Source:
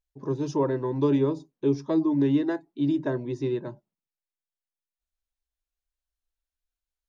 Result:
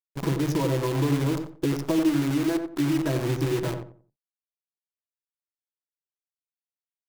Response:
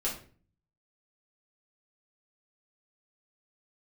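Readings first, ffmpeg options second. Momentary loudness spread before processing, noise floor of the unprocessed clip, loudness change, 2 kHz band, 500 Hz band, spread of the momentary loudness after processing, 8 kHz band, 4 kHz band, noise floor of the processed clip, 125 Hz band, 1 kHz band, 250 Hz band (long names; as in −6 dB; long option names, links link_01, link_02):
7 LU, below −85 dBFS, +1.0 dB, +7.0 dB, −1.5 dB, 5 LU, can't be measured, +10.0 dB, below −85 dBFS, +5.0 dB, +2.0 dB, +0.5 dB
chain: -filter_complex "[0:a]equalizer=frequency=130:width_type=o:width=2.5:gain=4.5,aecho=1:1:6.1:0.77,asplit=2[link_01][link_02];[link_02]alimiter=limit=-16dB:level=0:latency=1:release=158,volume=-2dB[link_03];[link_01][link_03]amix=inputs=2:normalize=0,acompressor=threshold=-23dB:ratio=5,acrusher=bits=6:dc=4:mix=0:aa=0.000001,asplit=2[link_04][link_05];[link_05]adelay=90,lowpass=frequency=1100:poles=1,volume=-5dB,asplit=2[link_06][link_07];[link_07]adelay=90,lowpass=frequency=1100:poles=1,volume=0.29,asplit=2[link_08][link_09];[link_09]adelay=90,lowpass=frequency=1100:poles=1,volume=0.29,asplit=2[link_10][link_11];[link_11]adelay=90,lowpass=frequency=1100:poles=1,volume=0.29[link_12];[link_06][link_08][link_10][link_12]amix=inputs=4:normalize=0[link_13];[link_04][link_13]amix=inputs=2:normalize=0"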